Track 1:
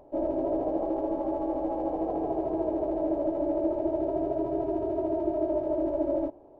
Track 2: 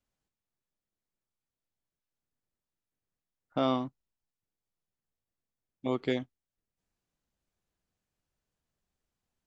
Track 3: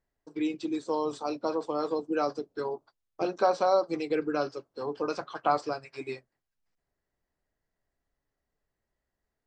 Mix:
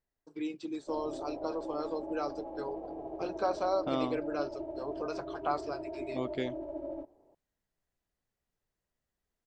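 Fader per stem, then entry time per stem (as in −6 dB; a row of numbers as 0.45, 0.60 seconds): −12.0, −5.0, −6.5 decibels; 0.75, 0.30, 0.00 seconds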